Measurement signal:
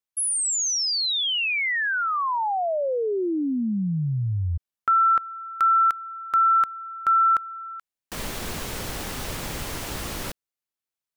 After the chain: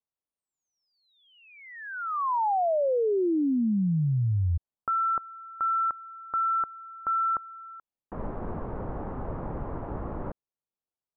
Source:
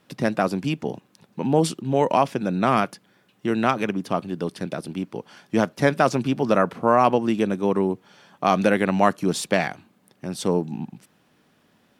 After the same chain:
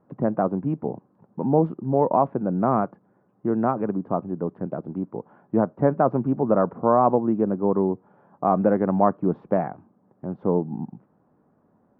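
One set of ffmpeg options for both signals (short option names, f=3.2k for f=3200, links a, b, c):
-af "lowpass=f=1.1k:w=0.5412,lowpass=f=1.1k:w=1.3066"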